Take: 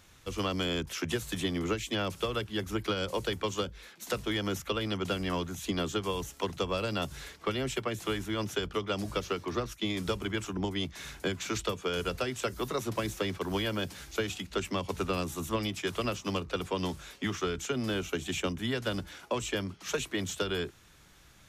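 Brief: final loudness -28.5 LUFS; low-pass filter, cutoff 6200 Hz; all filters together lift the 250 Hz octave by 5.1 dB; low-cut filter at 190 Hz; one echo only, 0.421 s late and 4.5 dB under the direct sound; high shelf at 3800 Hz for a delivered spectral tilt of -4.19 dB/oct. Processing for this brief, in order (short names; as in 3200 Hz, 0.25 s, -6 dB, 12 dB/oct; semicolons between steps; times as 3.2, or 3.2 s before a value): HPF 190 Hz; LPF 6200 Hz; bell 250 Hz +8.5 dB; high shelf 3800 Hz -5 dB; echo 0.421 s -4.5 dB; gain +2 dB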